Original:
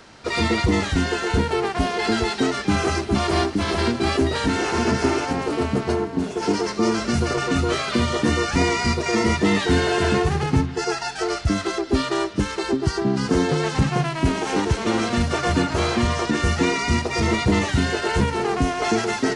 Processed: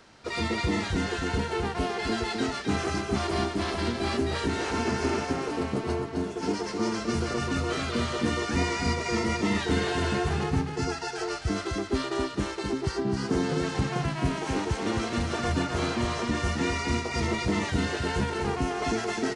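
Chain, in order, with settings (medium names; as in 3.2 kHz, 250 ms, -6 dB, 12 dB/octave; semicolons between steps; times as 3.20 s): delay 260 ms -5 dB; trim -8 dB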